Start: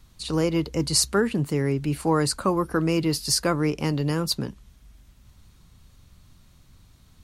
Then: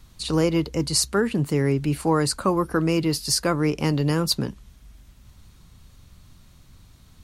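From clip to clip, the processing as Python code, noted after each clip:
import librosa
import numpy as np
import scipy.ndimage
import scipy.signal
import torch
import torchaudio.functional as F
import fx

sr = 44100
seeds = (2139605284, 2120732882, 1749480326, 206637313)

y = fx.rider(x, sr, range_db=3, speed_s=0.5)
y = F.gain(torch.from_numpy(y), 1.5).numpy()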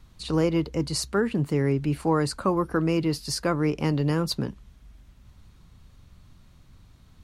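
y = fx.high_shelf(x, sr, hz=4400.0, db=-9.0)
y = F.gain(torch.from_numpy(y), -2.0).numpy()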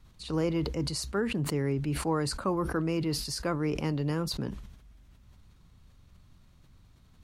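y = fx.sustainer(x, sr, db_per_s=59.0)
y = F.gain(torch.from_numpy(y), -6.0).numpy()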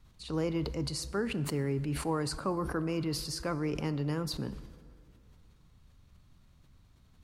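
y = fx.rev_plate(x, sr, seeds[0], rt60_s=2.4, hf_ratio=0.5, predelay_ms=0, drr_db=15.0)
y = F.gain(torch.from_numpy(y), -3.0).numpy()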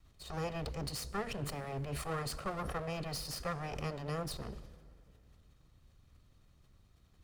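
y = fx.lower_of_two(x, sr, delay_ms=1.6)
y = F.gain(torch.from_numpy(y), -2.5).numpy()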